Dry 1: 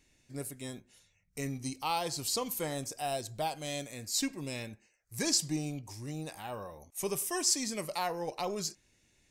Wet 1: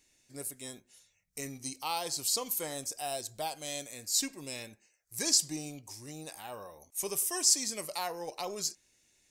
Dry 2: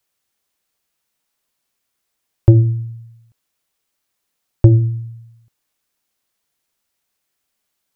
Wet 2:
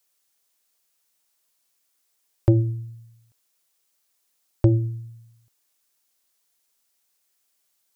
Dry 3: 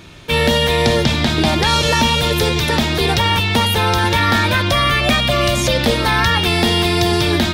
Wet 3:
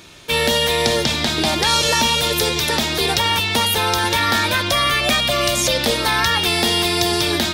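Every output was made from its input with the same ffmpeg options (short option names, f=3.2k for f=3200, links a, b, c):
-af "bass=f=250:g=-7,treble=f=4k:g=7,volume=-2.5dB"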